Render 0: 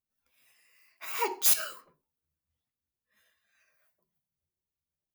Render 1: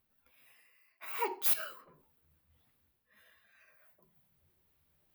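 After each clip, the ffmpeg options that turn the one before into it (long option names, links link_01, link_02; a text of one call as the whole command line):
ffmpeg -i in.wav -af "equalizer=frequency=6700:width_type=o:width=1.2:gain=-13,areverse,acompressor=mode=upward:threshold=-50dB:ratio=2.5,areverse,volume=-3.5dB" out.wav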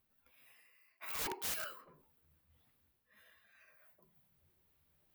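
ffmpeg -i in.wav -af "aeval=exprs='(mod(37.6*val(0)+1,2)-1)/37.6':channel_layout=same,volume=-1dB" out.wav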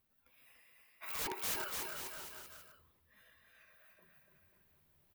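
ffmpeg -i in.wav -af "aecho=1:1:290|536.5|746|924.1|1076:0.631|0.398|0.251|0.158|0.1" out.wav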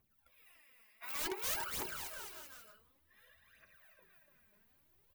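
ffmpeg -i in.wav -af "aphaser=in_gain=1:out_gain=1:delay=4.9:decay=0.64:speed=0.55:type=triangular,volume=-2dB" out.wav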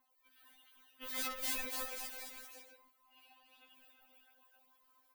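ffmpeg -i in.wav -af "aeval=exprs='val(0)*sin(2*PI*950*n/s)':channel_layout=same,afftfilt=real='re*3.46*eq(mod(b,12),0)':imag='im*3.46*eq(mod(b,12),0)':win_size=2048:overlap=0.75,volume=5.5dB" out.wav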